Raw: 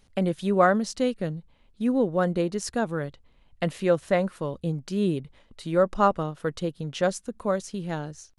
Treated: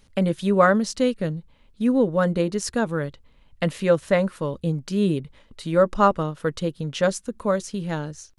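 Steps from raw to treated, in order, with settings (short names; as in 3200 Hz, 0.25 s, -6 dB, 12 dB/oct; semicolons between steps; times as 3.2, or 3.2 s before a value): bell 730 Hz -7 dB 0.2 oct; notch 360 Hz, Q 12; gain +4 dB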